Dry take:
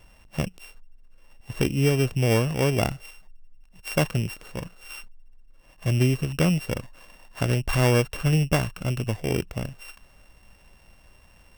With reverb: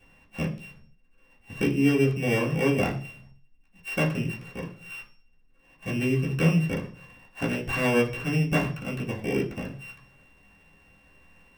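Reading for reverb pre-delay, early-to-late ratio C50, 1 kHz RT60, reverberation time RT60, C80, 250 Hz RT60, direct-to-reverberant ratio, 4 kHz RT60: 3 ms, 11.0 dB, 0.40 s, 0.45 s, 16.0 dB, 0.70 s, -7.0 dB, 0.55 s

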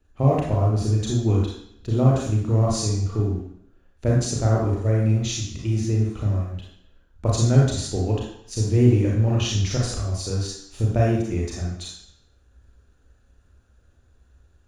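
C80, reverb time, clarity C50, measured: 5.0 dB, 0.65 s, 0.5 dB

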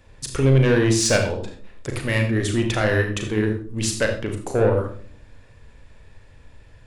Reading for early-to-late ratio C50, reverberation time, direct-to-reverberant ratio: 6.5 dB, 0.45 s, 3.0 dB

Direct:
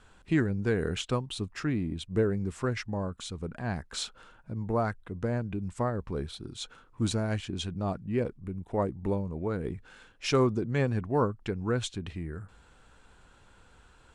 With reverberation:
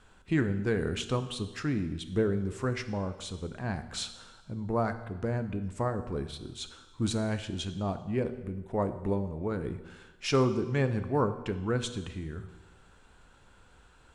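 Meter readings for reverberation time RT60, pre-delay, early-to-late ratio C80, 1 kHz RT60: 1.2 s, 13 ms, 13.5 dB, 1.2 s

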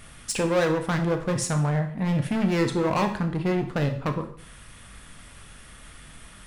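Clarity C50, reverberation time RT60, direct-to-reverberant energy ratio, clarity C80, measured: 10.0 dB, 0.55 s, 6.0 dB, 13.5 dB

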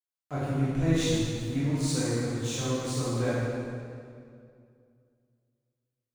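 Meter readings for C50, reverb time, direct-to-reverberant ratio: -4.0 dB, 2.3 s, -10.0 dB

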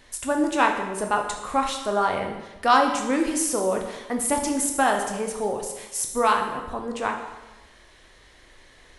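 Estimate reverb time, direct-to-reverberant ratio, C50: 1.1 s, 2.5 dB, 6.0 dB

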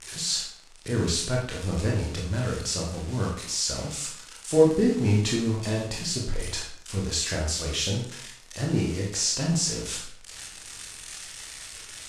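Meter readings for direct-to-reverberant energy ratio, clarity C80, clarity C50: -2.5 dB, 7.5 dB, 3.5 dB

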